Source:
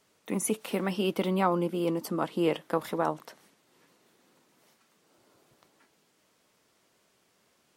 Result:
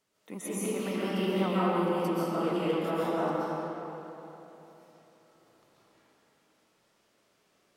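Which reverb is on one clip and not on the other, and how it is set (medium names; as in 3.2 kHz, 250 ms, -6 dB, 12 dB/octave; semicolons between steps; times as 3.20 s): algorithmic reverb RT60 3.4 s, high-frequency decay 0.65×, pre-delay 95 ms, DRR -10 dB; trim -10.5 dB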